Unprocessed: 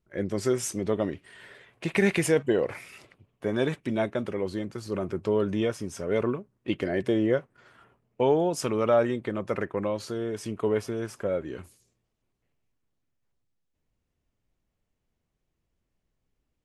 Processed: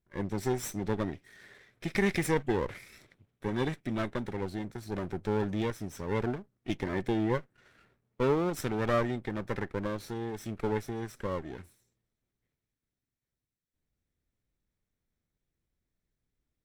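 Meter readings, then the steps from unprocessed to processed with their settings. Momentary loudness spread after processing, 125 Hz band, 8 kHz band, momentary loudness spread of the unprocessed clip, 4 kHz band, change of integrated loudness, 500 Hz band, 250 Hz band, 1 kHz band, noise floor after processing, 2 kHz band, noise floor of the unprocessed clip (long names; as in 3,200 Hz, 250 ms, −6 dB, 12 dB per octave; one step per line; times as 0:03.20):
10 LU, −1.0 dB, −7.0 dB, 10 LU, −4.5 dB, −5.0 dB, −7.0 dB, −4.0 dB, −1.5 dB, below −85 dBFS, −3.0 dB, −80 dBFS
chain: lower of the sound and its delayed copy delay 0.53 ms
level −4.5 dB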